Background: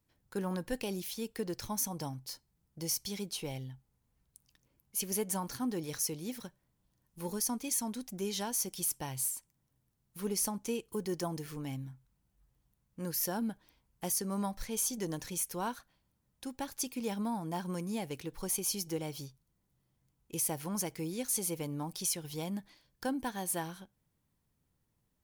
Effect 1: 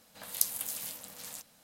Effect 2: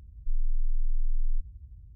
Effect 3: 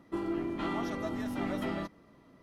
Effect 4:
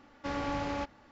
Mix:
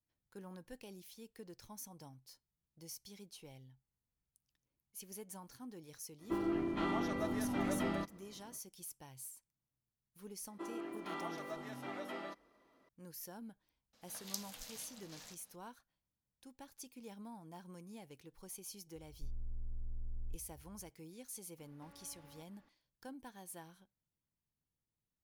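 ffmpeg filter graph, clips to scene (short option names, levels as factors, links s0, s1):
-filter_complex "[3:a]asplit=2[s0][s1];[0:a]volume=0.168[s2];[s1]highpass=400[s3];[1:a]highshelf=f=7500:t=q:w=1.5:g=-10[s4];[2:a]aeval=exprs='0.0841*(abs(mod(val(0)/0.0841+3,4)-2)-1)':c=same[s5];[4:a]acompressor=threshold=0.00501:ratio=6:attack=3.2:release=140:knee=1:detection=peak[s6];[s0]atrim=end=2.42,asetpts=PTS-STARTPTS,volume=0.794,afade=t=in:d=0.05,afade=t=out:st=2.37:d=0.05,adelay=272538S[s7];[s3]atrim=end=2.42,asetpts=PTS-STARTPTS,volume=0.473,afade=t=in:d=0.004:c=hsin,afade=t=out:st=2.416:d=0.004:c=hsin,adelay=10470[s8];[s4]atrim=end=1.63,asetpts=PTS-STARTPTS,volume=0.398,afade=t=in:d=0.004:c=hsin,afade=t=out:st=1.626:d=0.004:c=hsin,adelay=13930[s9];[s5]atrim=end=1.95,asetpts=PTS-STARTPTS,volume=0.211,afade=t=in:d=0.004:c=hsin,afade=t=out:st=1.946:d=0.004:c=hsin,adelay=18950[s10];[s6]atrim=end=1.11,asetpts=PTS-STARTPTS,volume=0.224,afade=t=in:d=0.004:c=hsin,afade=t=out:st=1.106:d=0.004:c=hsin,adelay=21580[s11];[s2][s7][s8][s9][s10][s11]amix=inputs=6:normalize=0"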